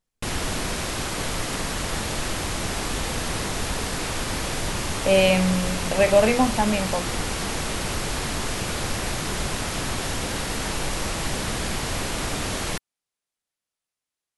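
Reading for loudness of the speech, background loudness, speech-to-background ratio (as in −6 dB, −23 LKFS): −21.0 LKFS, −27.0 LKFS, 6.0 dB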